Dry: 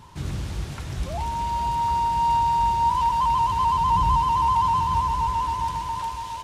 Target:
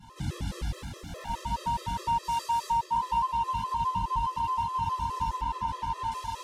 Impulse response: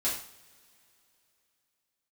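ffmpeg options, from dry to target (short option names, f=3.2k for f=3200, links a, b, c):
-filter_complex "[0:a]asettb=1/sr,asplit=3[a][b][c];[a]atrim=end=0.694[d];[b]atrim=start=0.69:end=1.29,asetpts=PTS-STARTPTS,afade=t=in:d=0.004:c=qsin,afade=t=out:st=0.596:d=0.004:c=qsin,volume=35.5dB,asoftclip=hard,volume=-35.5dB[e];[c]atrim=start=1.286[f];[d][e]acrossfade=d=0.004:c1=hsin:c2=qsin[g];[g][f]acrossfade=d=0.004:c1=qsin:c2=hsin,asettb=1/sr,asplit=3[h][i][j];[h]atrim=end=2.234[k];[i]atrim=start=2.23:end=2.71,asetpts=PTS-STARTPTS,afade=t=in:d=0.004:c=qsin,afade=t=out:st=0.476:d=0.004:c=qsin,bass=f=250:g=-15,treble=f=4k:g=7[l];[j]atrim=start=2.706[m];[k][l]acrossfade=d=0.004:c1=hsin:c2=qsin[n];[n][m]acrossfade=d=0.004:c1=qsin:c2=hsin[o];[1:a]atrim=start_sample=2205,asetrate=34398,aresample=44100[p];[o][p]afir=irnorm=-1:irlink=0,acompressor=threshold=-16dB:ratio=6,asettb=1/sr,asplit=3[q][r][s];[q]atrim=end=5.414[t];[r]atrim=start=5.41:end=6.12,asetpts=PTS-STARTPTS,afade=t=in:d=0.004:c=qsin,afade=t=out:st=0.706:d=0.004:c=qsin,highshelf=f=5.2k:g=-10.5[u];[s]atrim=start=6.116[v];[t][u]acrossfade=d=0.004:c1=hsin:c2=qsin[w];[w][v]acrossfade=d=0.004:c1=qsin:c2=hsin,afftfilt=real='re*gt(sin(2*PI*4.8*pts/sr)*(1-2*mod(floor(b*sr/1024/340),2)),0)':imag='im*gt(sin(2*PI*4.8*pts/sr)*(1-2*mod(floor(b*sr/1024/340),2)),0)':win_size=1024:overlap=0.75,volume=-7dB"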